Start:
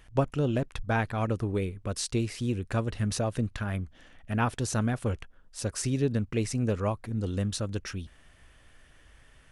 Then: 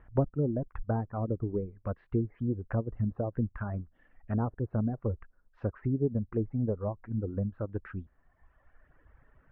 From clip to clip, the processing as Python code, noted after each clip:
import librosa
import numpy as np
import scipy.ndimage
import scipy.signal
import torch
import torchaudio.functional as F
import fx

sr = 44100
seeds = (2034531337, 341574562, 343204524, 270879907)

y = fx.env_lowpass_down(x, sr, base_hz=590.0, full_db=-25.0)
y = scipy.signal.sosfilt(scipy.signal.butter(4, 1600.0, 'lowpass', fs=sr, output='sos'), y)
y = fx.dereverb_blind(y, sr, rt60_s=1.5)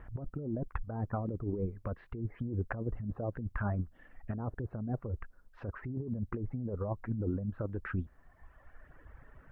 y = fx.over_compress(x, sr, threshold_db=-36.0, ratio=-1.0)
y = F.gain(torch.from_numpy(y), 1.0).numpy()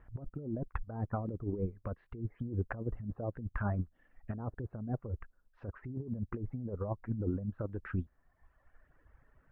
y = fx.upward_expand(x, sr, threshold_db=-52.0, expansion=1.5)
y = F.gain(torch.from_numpy(y), 1.0).numpy()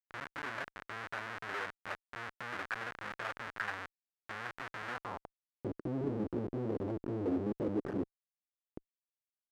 y = fx.chorus_voices(x, sr, voices=4, hz=0.34, base_ms=17, depth_ms=2.3, mix_pct=60)
y = fx.schmitt(y, sr, flips_db=-48.5)
y = fx.filter_sweep_bandpass(y, sr, from_hz=1600.0, to_hz=340.0, start_s=4.9, end_s=5.62, q=2.1)
y = F.gain(torch.from_numpy(y), 15.0).numpy()